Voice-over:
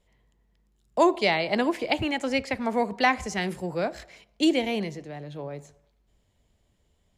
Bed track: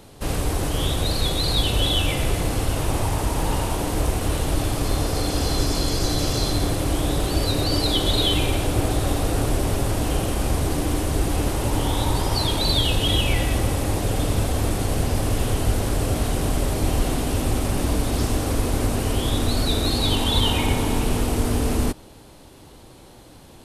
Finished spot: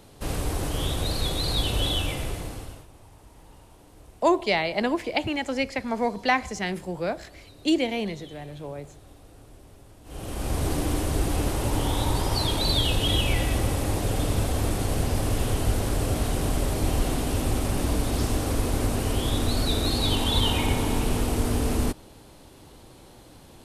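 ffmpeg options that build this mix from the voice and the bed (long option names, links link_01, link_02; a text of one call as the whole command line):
ffmpeg -i stem1.wav -i stem2.wav -filter_complex "[0:a]adelay=3250,volume=-0.5dB[link_01];[1:a]volume=20.5dB,afade=type=out:start_time=1.88:duration=0.99:silence=0.0668344,afade=type=in:start_time=10.04:duration=0.63:silence=0.0562341[link_02];[link_01][link_02]amix=inputs=2:normalize=0" out.wav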